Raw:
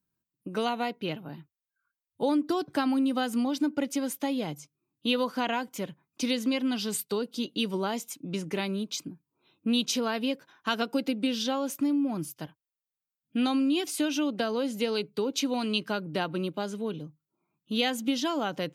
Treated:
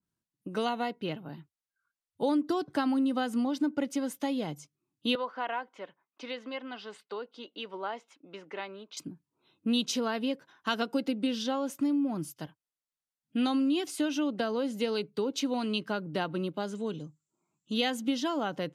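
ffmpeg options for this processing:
-filter_complex "[0:a]asettb=1/sr,asplit=3[s0][s1][s2];[s0]atrim=end=5.154[s3];[s1]atrim=start=5.15:end=8.97,asetpts=PTS-STARTPTS,afade=t=in:d=0.004:c=qsin,afade=t=out:st=3.816:d=0.004:c=qsin,highpass=580,lowpass=2200[s4];[s2]atrim=start=8.966[s5];[s3][s4]acrossfade=d=0.004:c1=hsin:c2=qsin[s6];[s6][s5]acrossfade=d=0.004:c1=qsin:c2=hsin,asettb=1/sr,asplit=3[s7][s8][s9];[s7]atrim=end=16.754[s10];[s8]atrim=start=16.75:end=17.74,asetpts=PTS-STARTPTS,afade=t=in:d=0.004:c=qsin,afade=t=out:st=0.986:d=0.004:c=qsin,lowpass=f=7400:t=q:w=9.2[s11];[s9]atrim=start=17.736[s12];[s10][s11]acrossfade=d=0.004:c1=hsin:c2=qsin[s13];[s13][s12]acrossfade=d=0.004:c1=qsin:c2=hsin,lowpass=12000,bandreject=f=2400:w=16,adynamicequalizer=threshold=0.00562:dfrequency=2500:dqfactor=0.7:tfrequency=2500:tqfactor=0.7:attack=5:release=100:ratio=0.375:range=2.5:mode=cutabove:tftype=highshelf,volume=0.841"

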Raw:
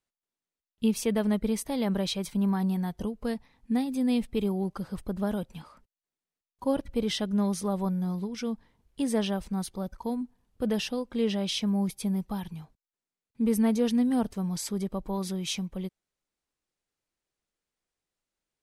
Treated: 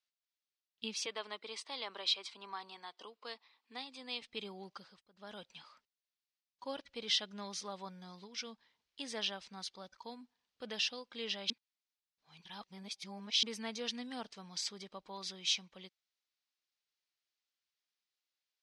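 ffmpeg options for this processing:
-filter_complex "[0:a]asettb=1/sr,asplit=3[s0][s1][s2];[s0]atrim=end=1.064[s3];[s1]atrim=start=1.06:end=4.22,asetpts=PTS-STARTPTS,afade=t=in:d=0.004:c=qsin,afade=t=out:st=3.156:d=0.004:c=qsin,highpass=f=310:w=0.5412,highpass=f=310:w=1.3066,equalizer=f=570:t=q:w=4:g=-3,equalizer=f=1100:t=q:w=4:g=7,equalizer=f=1700:t=q:w=4:g=-4,equalizer=f=6200:t=q:w=4:g=-8,lowpass=f=9200:w=0.5412,lowpass=f=9200:w=1.3066[s4];[s2]atrim=start=4.216[s5];[s3][s4]acrossfade=d=0.004:c1=hsin:c2=qsin[s6];[s6][s5]acrossfade=d=0.004:c1=qsin:c2=hsin,asplit=5[s7][s8][s9][s10][s11];[s7]atrim=end=5.02,asetpts=PTS-STARTPTS,afade=t=out:st=4.74:d=0.28:silence=0.11885[s12];[s8]atrim=start=5.02:end=5.13,asetpts=PTS-STARTPTS,volume=0.119[s13];[s9]atrim=start=5.13:end=11.502,asetpts=PTS-STARTPTS,afade=t=in:d=0.28:silence=0.11885[s14];[s10]atrim=start=11.498:end=13.432,asetpts=PTS-STARTPTS,areverse[s15];[s11]atrim=start=13.428[s16];[s12][s13][s14]concat=n=3:v=0:a=1[s17];[s17][s15]acrossfade=d=0.004:c1=hsin:c2=hsin[s18];[s18][s16]acrossfade=d=0.004:c1=hsin:c2=hsin,lowpass=f=4900:w=0.5412,lowpass=f=4900:w=1.3066,aderivative,volume=2.51"

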